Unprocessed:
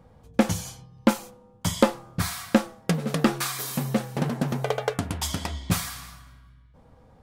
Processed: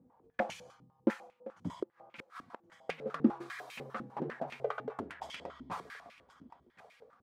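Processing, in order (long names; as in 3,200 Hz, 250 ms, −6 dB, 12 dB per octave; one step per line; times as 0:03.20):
0:01.74–0:02.78: gate with flip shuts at −15 dBFS, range −36 dB
on a send: repeating echo 1,071 ms, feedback 31%, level −18 dB
on the sum: band-pass on a step sequencer 10 Hz 270–2,400 Hz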